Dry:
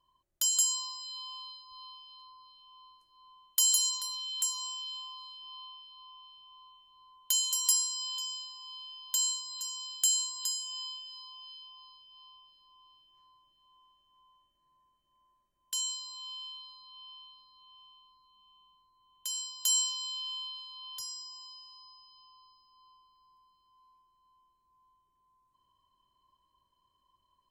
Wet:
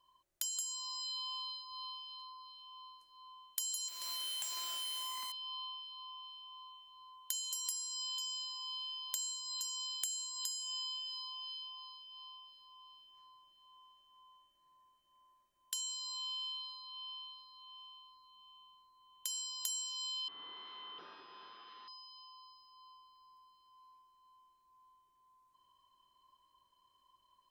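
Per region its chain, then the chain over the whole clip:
3.88–5.32 half-waves squared off + steep high-pass 190 Hz 48 dB/oct + compressor 4:1, threshold -38 dBFS
20.28–21.88 delta modulation 32 kbps, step -58.5 dBFS + speaker cabinet 250–3600 Hz, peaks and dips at 390 Hz +6 dB, 610 Hz -9 dB, 1200 Hz +7 dB, 2200 Hz -8 dB, 3400 Hz +5 dB
whole clip: low shelf 330 Hz -10.5 dB; compressor 8:1, threshold -41 dBFS; gain +3.5 dB

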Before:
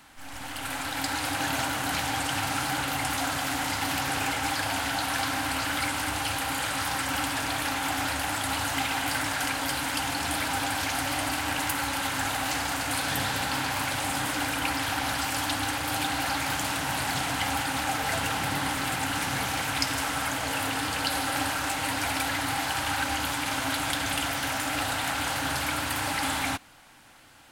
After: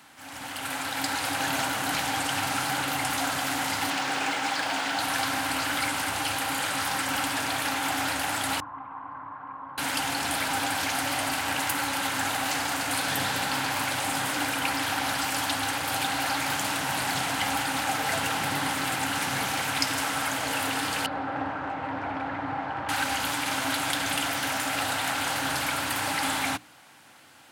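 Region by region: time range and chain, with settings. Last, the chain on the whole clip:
3.9–4.99 BPF 190–7200 Hz + companded quantiser 6-bit
8.6–9.78 ladder low-pass 1100 Hz, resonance 85% + bell 660 Hz -7 dB 2 oct
21.06–22.89 LPF 1200 Hz + Doppler distortion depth 0.14 ms
whole clip: HPF 120 Hz 12 dB/oct; notches 60/120/180/240/300 Hz; gain +1 dB

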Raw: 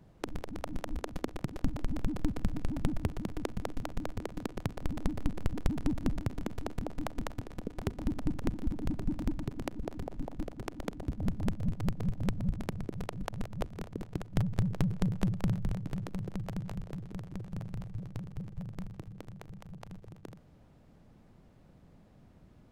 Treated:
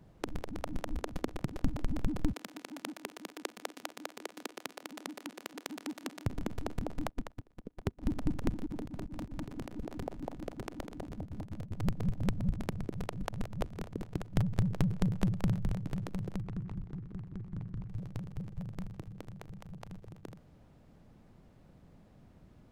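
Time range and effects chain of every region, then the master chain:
2.33–6.26 HPF 280 Hz 24 dB/oct + tilt shelf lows -5.5 dB, about 1200 Hz
7.09–8.03 high shelf 5100 Hz -5 dB + upward expander 2.5:1, over -47 dBFS
8.66–11.71 low shelf 150 Hz -7 dB + negative-ratio compressor -39 dBFS, ratio -0.5
16.4–17.89 LPF 3900 Hz + fixed phaser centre 1500 Hz, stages 4 + running maximum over 17 samples
whole clip: dry

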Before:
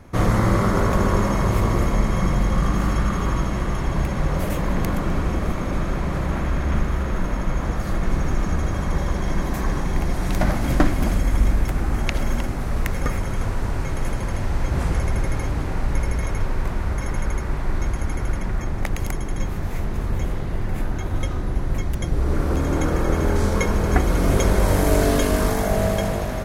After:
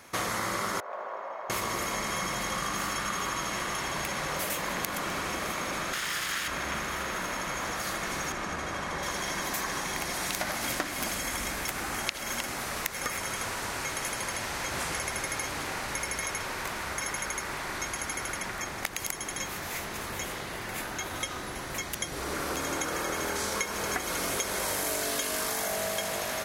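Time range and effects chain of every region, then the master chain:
0.8–1.5 ladder band-pass 750 Hz, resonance 50% + short-mantissa float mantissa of 8-bit
5.93–6.48 minimum comb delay 0.59 ms + tilt shelf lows -6.5 dB, about 1100 Hz
8.32–9.03 CVSD 64 kbps + LPF 2300 Hz 6 dB/oct
whole clip: HPF 880 Hz 6 dB/oct; high shelf 2000 Hz +9.5 dB; compressor, threshold -28 dBFS

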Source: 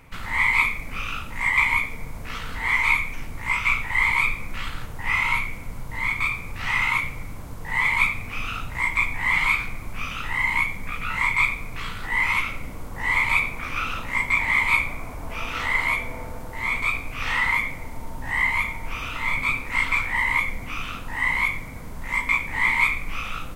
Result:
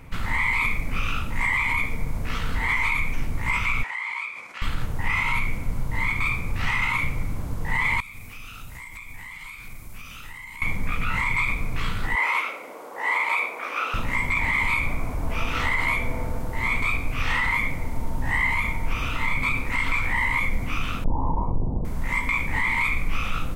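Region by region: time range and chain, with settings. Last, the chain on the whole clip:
3.83–4.62 notch 3700 Hz, Q 20 + compressor, threshold -28 dBFS + BPF 690–7400 Hz
8–10.62 pre-emphasis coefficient 0.8 + compressor, threshold -38 dBFS
12.15–13.94 HPF 440 Hz 24 dB/oct + tilt shelf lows +5 dB, about 1400 Hz
21.04–21.85 half-waves squared off + elliptic low-pass 940 Hz, stop band 50 dB + doubler 45 ms -14 dB
whole clip: low shelf 390 Hz +7 dB; limiter -15 dBFS; gain +1 dB

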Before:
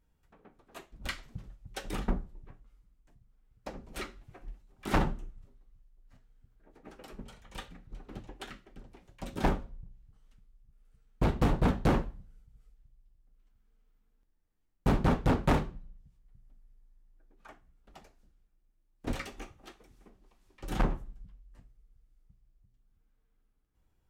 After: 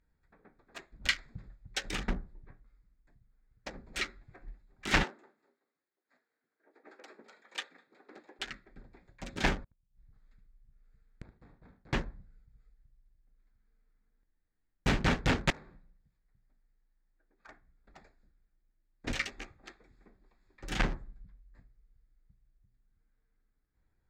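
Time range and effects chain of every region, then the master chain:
5.03–8.39 HPF 310 Hz 24 dB/oct + feedback echo 0.204 s, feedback 18%, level -19.5 dB
9.64–11.93 flipped gate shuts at -40 dBFS, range -30 dB + echo 74 ms -11 dB
15.5–17.48 low shelf 210 Hz -10.5 dB + compressor 4:1, threshold -47 dBFS
whole clip: Wiener smoothing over 15 samples; band shelf 3500 Hz +13 dB 2.6 oct; gain -3 dB

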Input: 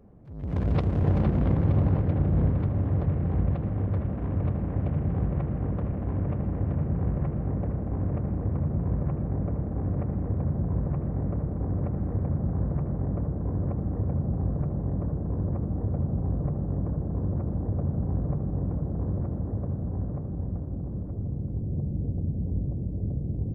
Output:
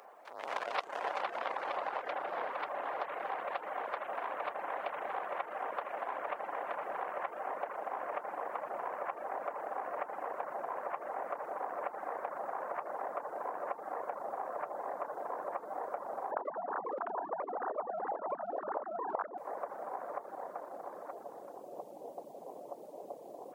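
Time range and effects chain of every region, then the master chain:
16.31–19.38 sine-wave speech + echo 0.181 s -20 dB
whole clip: reverb removal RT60 0.55 s; HPF 750 Hz 24 dB/oct; compressor 3:1, threshold -53 dBFS; gain +17 dB

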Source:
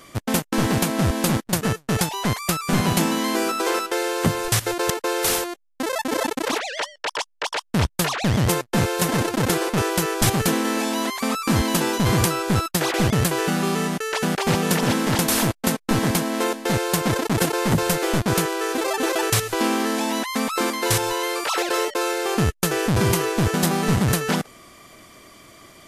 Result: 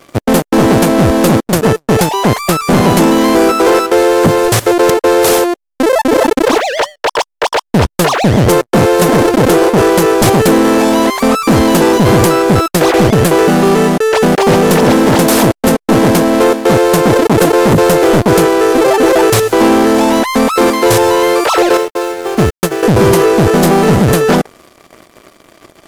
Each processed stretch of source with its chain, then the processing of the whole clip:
21.77–22.83 notch 480 Hz, Q 8.5 + sample gate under -30 dBFS + upward expander 2.5:1, over -29 dBFS
whole clip: bell 460 Hz +11 dB 2.4 oct; sample leveller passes 3; gain -3 dB

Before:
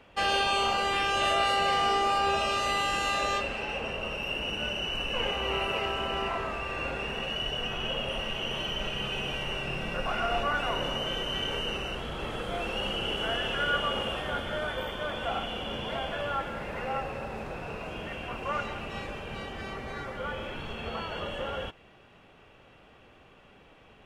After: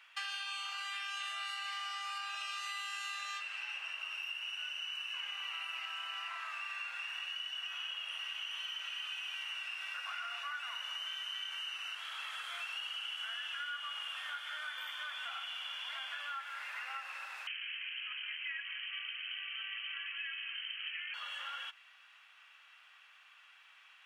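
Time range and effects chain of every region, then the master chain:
17.47–21.14 bell 2400 Hz -9 dB 0.44 oct + inverted band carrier 3100 Hz
whole clip: HPF 1300 Hz 24 dB/oct; compressor, threshold -40 dBFS; gain +1 dB

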